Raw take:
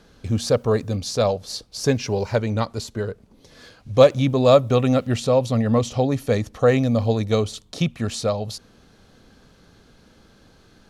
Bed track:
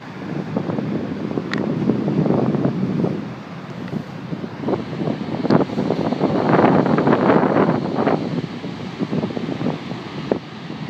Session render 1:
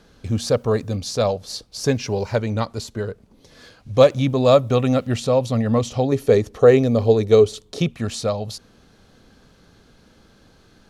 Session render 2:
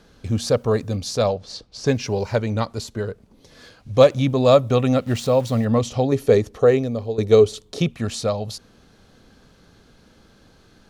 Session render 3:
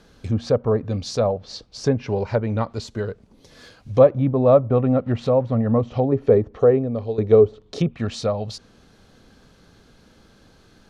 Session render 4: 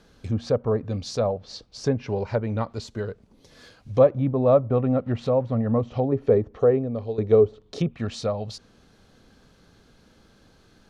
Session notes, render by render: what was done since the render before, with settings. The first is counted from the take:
6.12–7.93 bell 410 Hz +13.5 dB 0.38 oct
1.29–1.87 air absorption 94 m; 5.07–5.65 sample gate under -36.5 dBFS; 6.37–7.18 fade out, to -14 dB
treble ducked by the level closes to 1100 Hz, closed at -16 dBFS
gain -3.5 dB

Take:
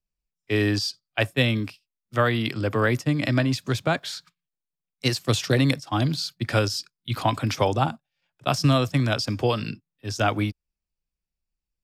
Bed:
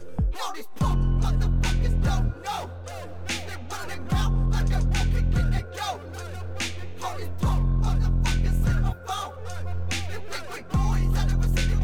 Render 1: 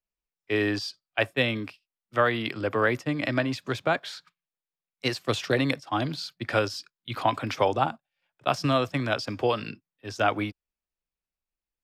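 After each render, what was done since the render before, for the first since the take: tone controls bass -10 dB, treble -10 dB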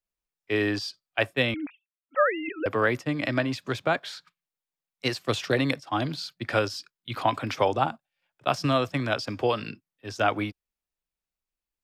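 1.54–2.66 sine-wave speech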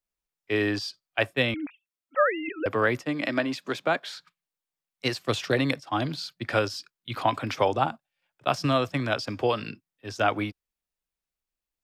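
3.03–4.09 HPF 170 Hz 24 dB/oct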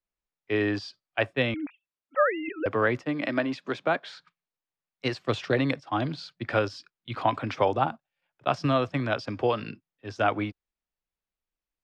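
LPF 7600 Hz 12 dB/oct; high shelf 4600 Hz -12 dB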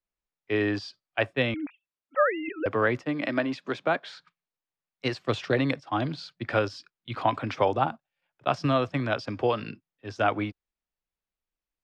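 nothing audible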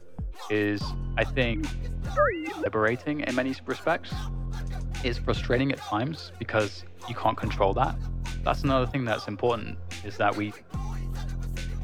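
add bed -10 dB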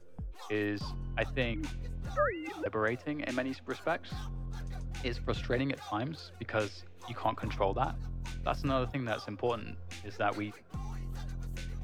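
gain -7 dB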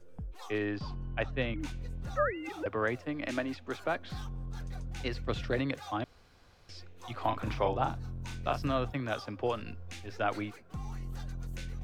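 0.58–1.6 air absorption 110 m; 6.04–6.69 room tone; 7.2–8.62 doubler 37 ms -6 dB

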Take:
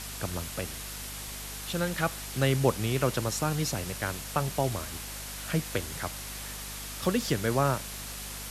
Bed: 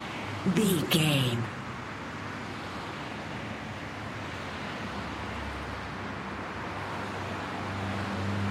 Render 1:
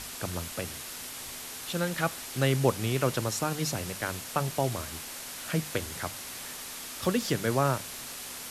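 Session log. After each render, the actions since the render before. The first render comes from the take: notches 50/100/150/200 Hz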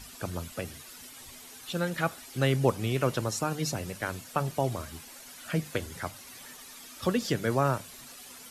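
denoiser 11 dB, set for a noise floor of -41 dBFS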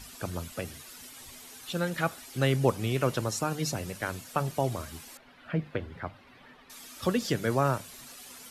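5.17–6.7 air absorption 400 m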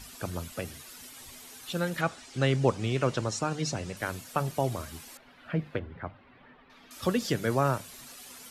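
2.01–3.97 LPF 8000 Hz 24 dB/oct; 5.79–6.91 air absorption 310 m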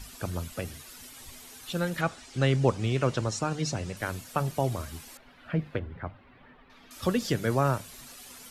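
low shelf 74 Hz +9.5 dB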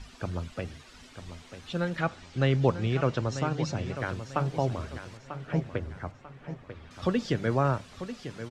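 air absorption 120 m; feedback echo 0.943 s, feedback 35%, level -11 dB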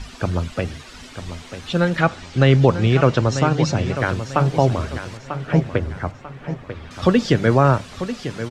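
gain +11.5 dB; limiter -2 dBFS, peak gain reduction 3 dB

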